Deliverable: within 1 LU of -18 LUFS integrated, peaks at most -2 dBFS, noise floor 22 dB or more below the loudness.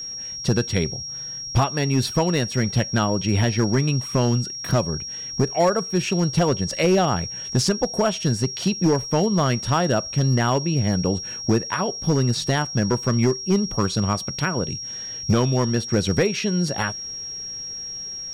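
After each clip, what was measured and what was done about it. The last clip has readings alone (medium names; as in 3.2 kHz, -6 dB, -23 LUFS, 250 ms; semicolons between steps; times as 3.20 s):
clipped samples 1.2%; clipping level -12.0 dBFS; steady tone 5.6 kHz; tone level -30 dBFS; loudness -22.5 LUFS; peak level -12.0 dBFS; loudness target -18.0 LUFS
-> clip repair -12 dBFS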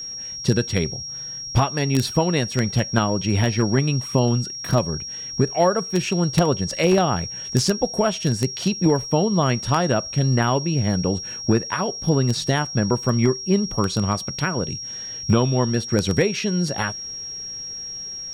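clipped samples 0.0%; steady tone 5.6 kHz; tone level -30 dBFS
-> band-stop 5.6 kHz, Q 30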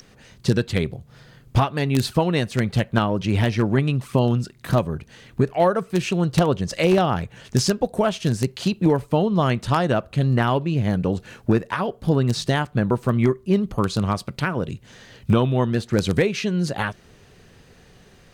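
steady tone not found; loudness -22.0 LUFS; peak level -3.0 dBFS; loudness target -18.0 LUFS
-> trim +4 dB; peak limiter -2 dBFS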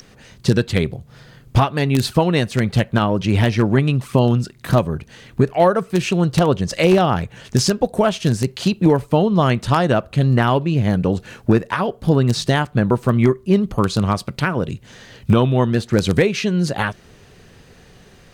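loudness -18.0 LUFS; peak level -2.0 dBFS; noise floor -48 dBFS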